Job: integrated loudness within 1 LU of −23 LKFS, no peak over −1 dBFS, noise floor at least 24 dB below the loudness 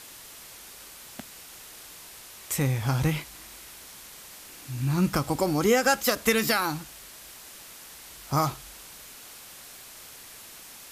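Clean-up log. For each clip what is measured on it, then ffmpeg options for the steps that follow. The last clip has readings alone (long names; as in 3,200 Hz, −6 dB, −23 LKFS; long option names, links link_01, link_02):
background noise floor −46 dBFS; target noise floor −50 dBFS; integrated loudness −26.0 LKFS; sample peak −8.5 dBFS; target loudness −23.0 LKFS
→ -af "afftdn=noise_reduction=6:noise_floor=-46"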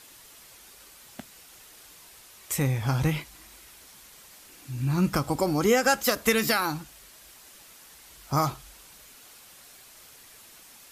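background noise floor −51 dBFS; integrated loudness −26.0 LKFS; sample peak −8.5 dBFS; target loudness −23.0 LKFS
→ -af "volume=3dB"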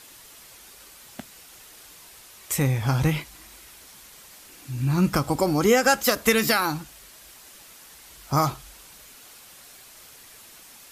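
integrated loudness −23.0 LKFS; sample peak −5.5 dBFS; background noise floor −48 dBFS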